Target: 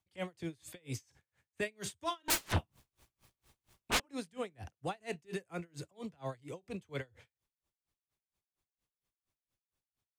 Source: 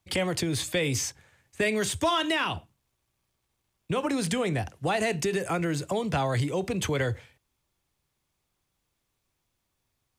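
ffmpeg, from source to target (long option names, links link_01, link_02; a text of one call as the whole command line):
ffmpeg -i in.wav -filter_complex "[0:a]asettb=1/sr,asplit=3[link_01][link_02][link_03];[link_01]atrim=end=2.284[link_04];[link_02]atrim=start=2.28:end=4,asetpts=PTS-STARTPTS,afade=type=in:duration=0.004:curve=qsin,afade=type=out:start_time=1.716:duration=0.004:curve=qsin,aeval=exprs='0.158*sin(PI/2*7.94*val(0)/0.158)':channel_layout=same[link_05];[link_03]atrim=start=3.996[link_06];[link_04][link_05]acrossfade=duration=0.004:curve1=hsin:curve2=qsin[link_07];[link_07][link_06]acrossfade=duration=0.004:curve1=qsin:curve2=hsin,aeval=exprs='val(0)*pow(10,-35*(0.5-0.5*cos(2*PI*4.3*n/s))/20)':channel_layout=same,volume=-8dB" out.wav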